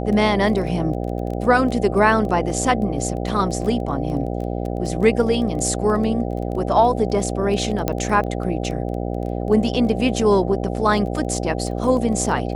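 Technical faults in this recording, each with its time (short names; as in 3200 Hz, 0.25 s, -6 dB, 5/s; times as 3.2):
buzz 60 Hz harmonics 13 -25 dBFS
crackle 11/s -27 dBFS
7.88 pop -6 dBFS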